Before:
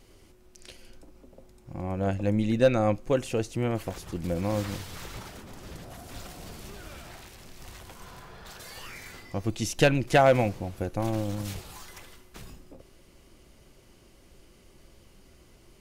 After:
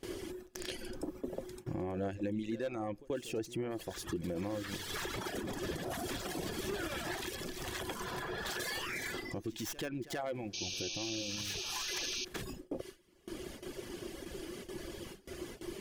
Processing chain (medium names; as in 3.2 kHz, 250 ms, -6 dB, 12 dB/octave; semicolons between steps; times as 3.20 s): tracing distortion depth 0.14 ms; reverb removal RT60 1.1 s; compression 4:1, threshold -45 dBFS, peak gain reduction 24 dB; small resonant body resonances 350/1700/3300 Hz, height 9 dB, ringing for 25 ms; peak limiter -37 dBFS, peak gain reduction 10 dB; bass shelf 81 Hz -10 dB; pre-echo 83 ms -16.5 dB; painted sound noise, 10.53–12.25 s, 2.3–6.6 kHz -47 dBFS; gain riding within 4 dB 2 s; gate with hold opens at -44 dBFS; trim +9 dB